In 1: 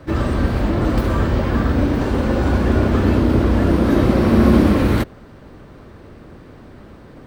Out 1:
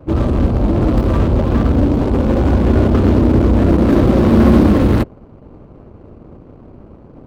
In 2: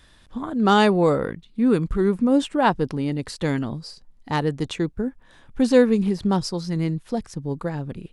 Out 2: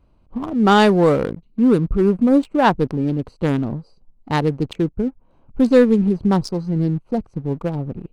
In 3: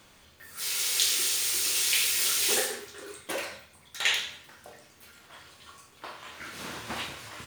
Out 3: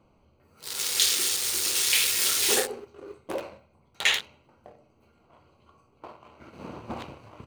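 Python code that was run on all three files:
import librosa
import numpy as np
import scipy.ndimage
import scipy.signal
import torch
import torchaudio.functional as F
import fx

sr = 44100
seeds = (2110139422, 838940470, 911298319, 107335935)

y = fx.wiener(x, sr, points=25)
y = fx.leveller(y, sr, passes=1)
y = y * 10.0 ** (1.0 / 20.0)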